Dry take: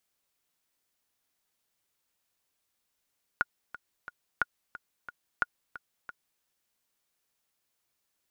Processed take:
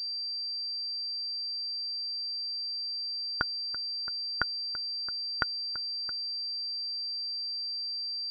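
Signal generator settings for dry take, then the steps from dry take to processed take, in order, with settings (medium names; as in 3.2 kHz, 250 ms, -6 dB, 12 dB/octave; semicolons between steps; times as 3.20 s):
metronome 179 bpm, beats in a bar 3, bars 3, 1.44 kHz, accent 16 dB -12 dBFS
spectral noise reduction 9 dB; bass shelf 320 Hz +9.5 dB; class-D stage that switches slowly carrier 4.7 kHz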